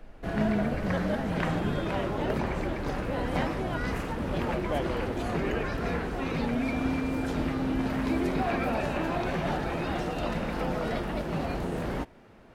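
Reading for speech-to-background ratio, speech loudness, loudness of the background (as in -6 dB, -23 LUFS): -3.0 dB, -33.5 LUFS, -30.5 LUFS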